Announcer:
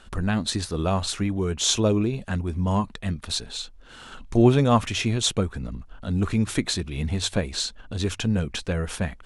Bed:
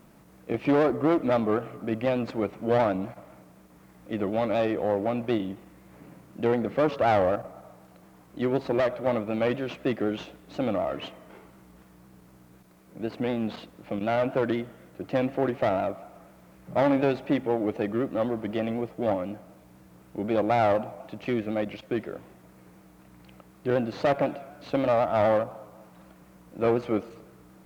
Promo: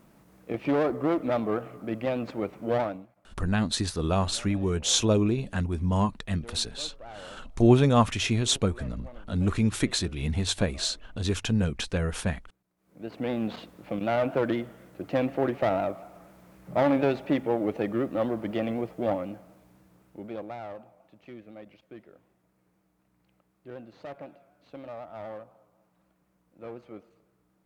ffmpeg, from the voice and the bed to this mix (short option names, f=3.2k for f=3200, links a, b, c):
-filter_complex "[0:a]adelay=3250,volume=-1.5dB[a];[1:a]volume=19dB,afade=t=out:st=2.75:d=0.32:silence=0.105925,afade=t=in:st=12.77:d=0.61:silence=0.0794328,afade=t=out:st=18.92:d=1.68:silence=0.141254[b];[a][b]amix=inputs=2:normalize=0"